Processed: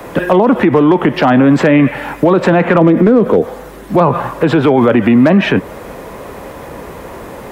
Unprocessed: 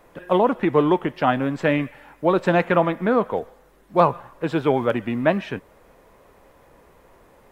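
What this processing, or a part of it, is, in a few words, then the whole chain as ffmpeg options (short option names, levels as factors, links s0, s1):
mastering chain: -filter_complex "[0:a]asplit=3[s0][s1][s2];[s0]afade=t=out:st=2.8:d=0.02[s3];[s1]lowshelf=f=560:t=q:w=1.5:g=9.5,afade=t=in:st=2.8:d=0.02,afade=t=out:st=3.4:d=0.02[s4];[s2]afade=t=in:st=3.4:d=0.02[s5];[s3][s4][s5]amix=inputs=3:normalize=0,highpass=43,equalizer=f=220:t=o:w=1.8:g=3.5,acrossover=split=140|340|3100[s6][s7][s8][s9];[s6]acompressor=threshold=0.0112:ratio=4[s10];[s7]acompressor=threshold=0.126:ratio=4[s11];[s8]acompressor=threshold=0.158:ratio=4[s12];[s9]acompressor=threshold=0.00224:ratio=4[s13];[s10][s11][s12][s13]amix=inputs=4:normalize=0,acompressor=threshold=0.0794:ratio=2,asoftclip=type=hard:threshold=0.2,alimiter=level_in=15.8:limit=0.891:release=50:level=0:latency=1,volume=0.891"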